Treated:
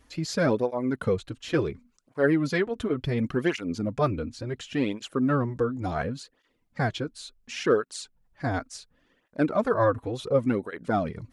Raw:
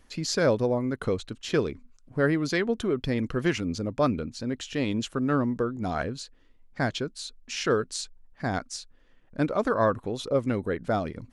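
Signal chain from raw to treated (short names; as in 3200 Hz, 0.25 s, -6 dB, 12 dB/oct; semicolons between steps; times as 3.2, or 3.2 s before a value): dynamic EQ 5700 Hz, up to -6 dB, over -49 dBFS, Q 0.83; tape flanging out of phase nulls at 0.7 Hz, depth 5.8 ms; gain +3.5 dB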